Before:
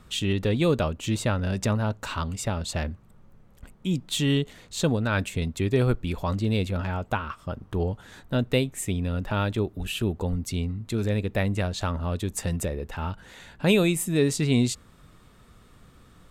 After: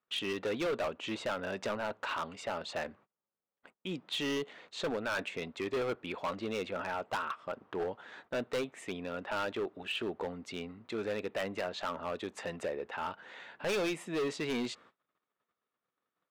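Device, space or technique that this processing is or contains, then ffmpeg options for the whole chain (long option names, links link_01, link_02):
walkie-talkie: -af "highpass=450,lowpass=2800,asoftclip=type=hard:threshold=-29.5dB,agate=range=-30dB:threshold=-57dB:ratio=16:detection=peak"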